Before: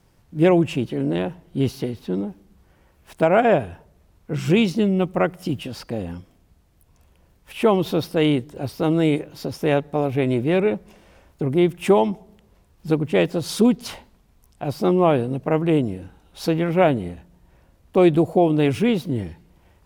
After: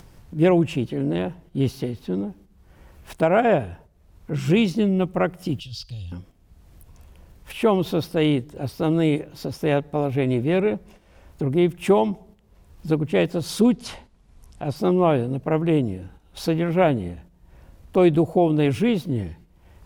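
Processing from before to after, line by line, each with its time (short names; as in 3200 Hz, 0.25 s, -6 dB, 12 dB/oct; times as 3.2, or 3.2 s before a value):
5.6–6.12 EQ curve 130 Hz 0 dB, 190 Hz -21 dB, 370 Hz -27 dB, 2000 Hz -19 dB, 3200 Hz +5 dB, 5100 Hz +6 dB, 9700 Hz -7 dB
13.62–14.76 LPF 11000 Hz 24 dB/oct
whole clip: gate -46 dBFS, range -9 dB; low shelf 100 Hz +6.5 dB; upward compressor, threshold -30 dBFS; gain -2 dB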